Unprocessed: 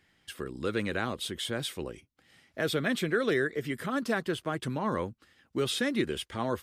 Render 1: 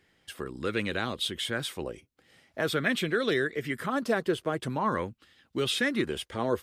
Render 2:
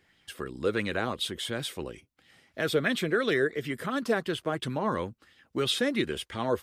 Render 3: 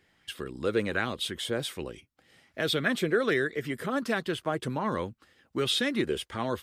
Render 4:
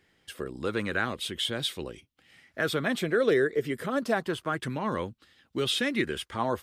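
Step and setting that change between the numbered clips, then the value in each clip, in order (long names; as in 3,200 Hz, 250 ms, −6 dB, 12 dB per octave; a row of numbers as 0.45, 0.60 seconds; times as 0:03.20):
auto-filter bell, speed: 0.46, 2.9, 1.3, 0.28 Hertz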